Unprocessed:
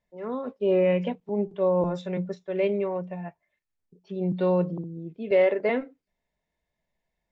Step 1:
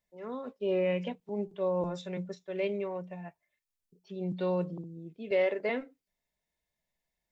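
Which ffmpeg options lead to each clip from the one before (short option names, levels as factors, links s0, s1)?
-af "highshelf=f=3100:g=11,volume=0.422"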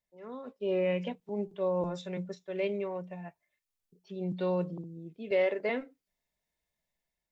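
-af "dynaudnorm=f=220:g=5:m=1.78,volume=0.562"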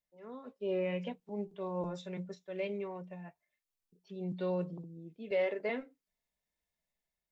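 -af "flanger=delay=3.7:depth=1.4:regen=-68:speed=0.77:shape=triangular"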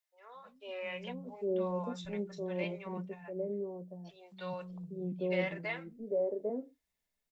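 -filter_complex "[0:a]acrossover=split=150|650[s0][s1][s2];[s0]adelay=210[s3];[s1]adelay=800[s4];[s3][s4][s2]amix=inputs=3:normalize=0,volume=1.41"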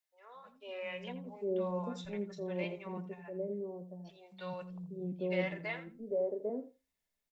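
-filter_complex "[0:a]asplit=2[s0][s1];[s1]adelay=83,lowpass=f=3900:p=1,volume=0.211,asplit=2[s2][s3];[s3]adelay=83,lowpass=f=3900:p=1,volume=0.15[s4];[s0][s2][s4]amix=inputs=3:normalize=0,volume=0.841"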